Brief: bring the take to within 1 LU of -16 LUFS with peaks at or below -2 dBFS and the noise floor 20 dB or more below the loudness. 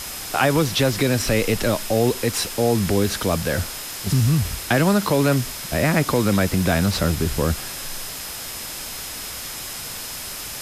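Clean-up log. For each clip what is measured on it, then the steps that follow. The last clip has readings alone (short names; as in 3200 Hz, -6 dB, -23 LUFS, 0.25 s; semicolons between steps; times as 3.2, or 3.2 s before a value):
steady tone 5100 Hz; tone level -40 dBFS; noise floor -33 dBFS; noise floor target -42 dBFS; loudness -21.5 LUFS; peak -5.5 dBFS; loudness target -16.0 LUFS
-> notch 5100 Hz, Q 30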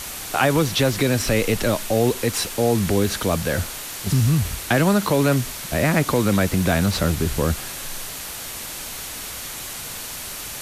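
steady tone none; noise floor -33 dBFS; noise floor target -42 dBFS
-> denoiser 9 dB, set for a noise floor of -33 dBFS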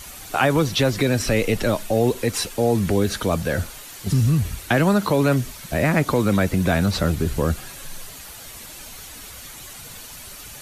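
noise floor -39 dBFS; noise floor target -41 dBFS
-> denoiser 6 dB, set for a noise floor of -39 dBFS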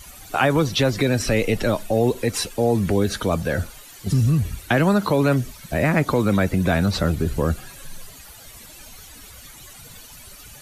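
noise floor -43 dBFS; loudness -21.0 LUFS; peak -6.0 dBFS; loudness target -16.0 LUFS
-> gain +5 dB; limiter -2 dBFS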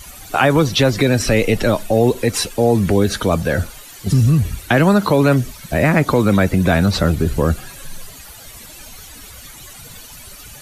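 loudness -16.0 LUFS; peak -2.0 dBFS; noise floor -38 dBFS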